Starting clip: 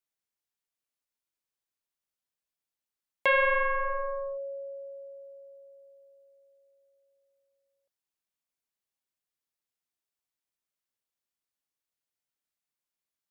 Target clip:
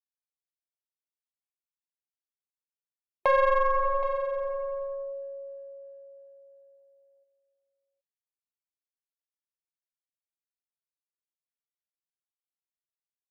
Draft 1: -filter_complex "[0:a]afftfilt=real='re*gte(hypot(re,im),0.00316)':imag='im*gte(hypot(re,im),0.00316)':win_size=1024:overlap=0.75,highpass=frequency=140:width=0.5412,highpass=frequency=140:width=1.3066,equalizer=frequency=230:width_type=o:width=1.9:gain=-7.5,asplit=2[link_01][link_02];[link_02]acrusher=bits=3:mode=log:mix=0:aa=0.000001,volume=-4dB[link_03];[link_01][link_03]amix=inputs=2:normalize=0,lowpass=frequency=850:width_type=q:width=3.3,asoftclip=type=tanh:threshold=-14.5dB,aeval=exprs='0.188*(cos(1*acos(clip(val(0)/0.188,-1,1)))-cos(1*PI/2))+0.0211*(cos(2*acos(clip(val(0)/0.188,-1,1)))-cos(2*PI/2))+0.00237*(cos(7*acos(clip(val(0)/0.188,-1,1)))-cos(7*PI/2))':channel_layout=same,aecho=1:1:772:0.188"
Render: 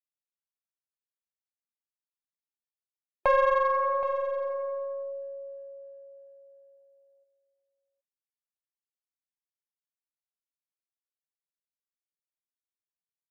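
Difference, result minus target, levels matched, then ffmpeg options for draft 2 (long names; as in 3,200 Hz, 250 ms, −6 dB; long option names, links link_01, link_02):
125 Hz band −6.0 dB
-filter_complex "[0:a]afftfilt=real='re*gte(hypot(re,im),0.00316)':imag='im*gte(hypot(re,im),0.00316)':win_size=1024:overlap=0.75,equalizer=frequency=230:width_type=o:width=1.9:gain=-7.5,asplit=2[link_01][link_02];[link_02]acrusher=bits=3:mode=log:mix=0:aa=0.000001,volume=-4dB[link_03];[link_01][link_03]amix=inputs=2:normalize=0,lowpass=frequency=850:width_type=q:width=3.3,asoftclip=type=tanh:threshold=-14.5dB,aeval=exprs='0.188*(cos(1*acos(clip(val(0)/0.188,-1,1)))-cos(1*PI/2))+0.0211*(cos(2*acos(clip(val(0)/0.188,-1,1)))-cos(2*PI/2))+0.00237*(cos(7*acos(clip(val(0)/0.188,-1,1)))-cos(7*PI/2))':channel_layout=same,aecho=1:1:772:0.188"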